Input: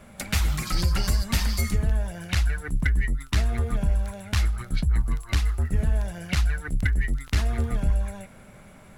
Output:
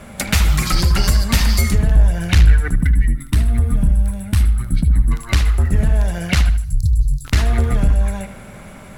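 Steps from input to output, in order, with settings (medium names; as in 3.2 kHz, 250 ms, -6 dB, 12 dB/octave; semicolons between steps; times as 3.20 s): 1.95–2.65 s: bass shelf 84 Hz +11.5 dB; 2.76–5.11 s: time-frequency box 330–7700 Hz -10 dB; 6.49–7.25 s: Chebyshev band-stop 150–4300 Hz, order 5; in parallel at +1 dB: compression 6:1, threshold -25 dBFS, peak gain reduction 12.5 dB; on the sum: one-sided clip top -12.5 dBFS; on a send: bucket-brigade echo 76 ms, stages 2048, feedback 37%, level -11 dB; on the sum: trim +4.5 dB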